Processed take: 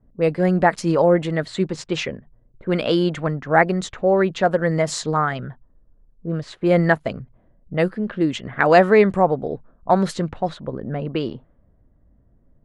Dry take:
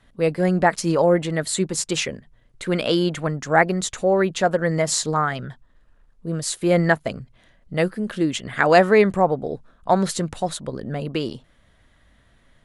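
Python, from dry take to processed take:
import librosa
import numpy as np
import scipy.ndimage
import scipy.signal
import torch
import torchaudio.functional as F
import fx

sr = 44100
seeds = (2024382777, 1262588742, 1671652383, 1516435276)

y = fx.env_lowpass(x, sr, base_hz=430.0, full_db=-17.0)
y = fx.lowpass(y, sr, hz=3100.0, slope=6)
y = y * 10.0 ** (1.5 / 20.0)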